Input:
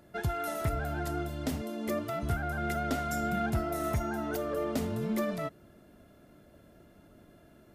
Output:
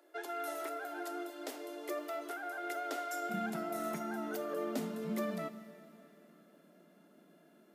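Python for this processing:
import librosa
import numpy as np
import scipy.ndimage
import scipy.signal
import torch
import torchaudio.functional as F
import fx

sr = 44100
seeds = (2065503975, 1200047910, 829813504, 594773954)

y = fx.steep_highpass(x, sr, hz=fx.steps((0.0, 290.0), (3.29, 160.0)), slope=96)
y = fx.rev_plate(y, sr, seeds[0], rt60_s=3.1, hf_ratio=1.0, predelay_ms=0, drr_db=12.0)
y = F.gain(torch.from_numpy(y), -5.0).numpy()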